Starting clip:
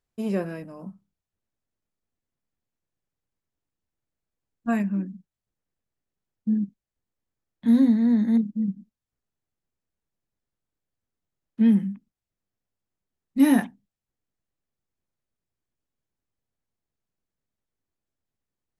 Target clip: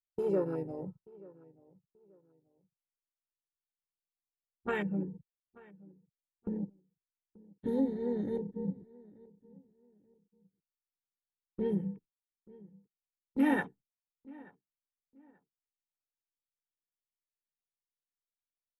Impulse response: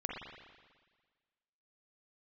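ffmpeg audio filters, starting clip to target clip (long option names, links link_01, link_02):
-filter_complex "[0:a]afwtdn=0.0158,agate=range=-14dB:threshold=-45dB:ratio=16:detection=peak,aecho=1:1:2.2:0.92,acompressor=threshold=-32dB:ratio=2,asplit=2[link_01][link_02];[link_02]asetrate=37084,aresample=44100,atempo=1.18921,volume=-11dB[link_03];[link_01][link_03]amix=inputs=2:normalize=0,asplit=2[link_04][link_05];[link_05]adelay=883,lowpass=frequency=1700:poles=1,volume=-22dB,asplit=2[link_06][link_07];[link_07]adelay=883,lowpass=frequency=1700:poles=1,volume=0.29[link_08];[link_04][link_06][link_08]amix=inputs=3:normalize=0,volume=1dB"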